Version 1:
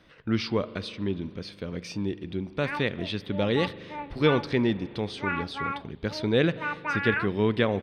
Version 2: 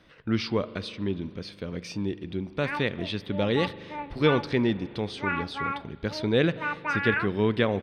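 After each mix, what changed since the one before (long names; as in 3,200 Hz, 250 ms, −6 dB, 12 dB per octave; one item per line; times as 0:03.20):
background: send on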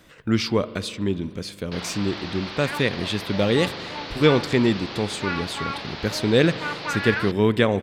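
speech +5.0 dB
first sound: unmuted
master: remove Savitzky-Golay smoothing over 15 samples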